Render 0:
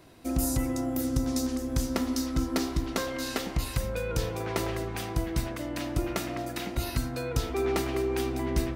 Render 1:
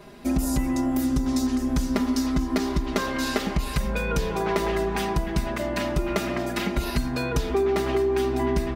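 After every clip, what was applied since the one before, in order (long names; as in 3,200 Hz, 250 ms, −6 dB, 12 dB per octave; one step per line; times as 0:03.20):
high-shelf EQ 4,700 Hz −8.5 dB
comb filter 4.9 ms, depth 98%
downward compressor, threshold −27 dBFS, peak gain reduction 9 dB
level +7 dB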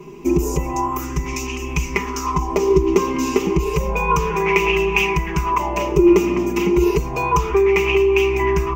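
EQ curve with evenly spaced ripples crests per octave 0.75, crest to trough 17 dB
auto-filter bell 0.31 Hz 260–2,700 Hz +16 dB
level −1 dB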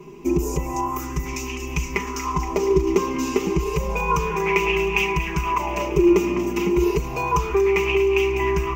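delay with a high-pass on its return 236 ms, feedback 66%, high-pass 1,500 Hz, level −10.5 dB
level −3.5 dB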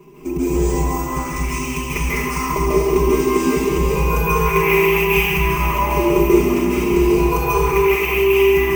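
decimation without filtering 3×
convolution reverb RT60 1.7 s, pre-delay 133 ms, DRR −8.5 dB
level −3.5 dB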